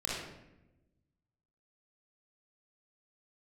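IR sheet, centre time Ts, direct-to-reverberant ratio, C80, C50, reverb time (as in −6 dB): 74 ms, −5.5 dB, 3.0 dB, −1.5 dB, 0.95 s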